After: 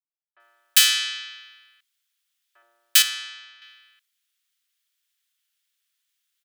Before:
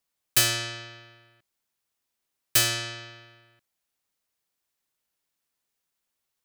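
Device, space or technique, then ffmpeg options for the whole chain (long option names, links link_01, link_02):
headphones lying on a table: -filter_complex "[0:a]asettb=1/sr,asplit=3[link_01][link_02][link_03];[link_01]atrim=end=2.624[link_04];[link_02]atrim=start=2.62:end=3.22,asetpts=PTS-STARTPTS,afade=type=in:duration=0.004:curve=qsin,afade=type=out:start_time=0.596:duration=0.004:curve=qsin,tiltshelf=frequency=800:gain=9.5[link_05];[link_03]atrim=start=3.216[link_06];[link_04][link_05]acrossfade=duration=0.004:curve1=hsin:curve2=qsin[link_07];[link_07][link_06]acrossfade=duration=0.004:curve1=qsin:curve2=hsin,highpass=frequency=1400:width=0.5412,highpass=frequency=1400:width=1.3066,equalizer=frequency=3300:width_type=o:width=0.46:gain=6.5,acrossover=split=630[link_08][link_09];[link_09]adelay=400[link_10];[link_08][link_10]amix=inputs=2:normalize=0,volume=4.5dB"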